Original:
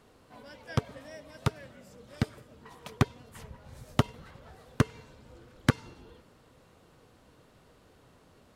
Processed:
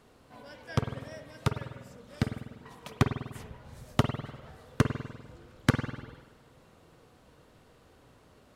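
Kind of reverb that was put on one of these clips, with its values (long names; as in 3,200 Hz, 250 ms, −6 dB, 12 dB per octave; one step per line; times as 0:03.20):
spring reverb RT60 1.1 s, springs 49 ms, chirp 65 ms, DRR 6.5 dB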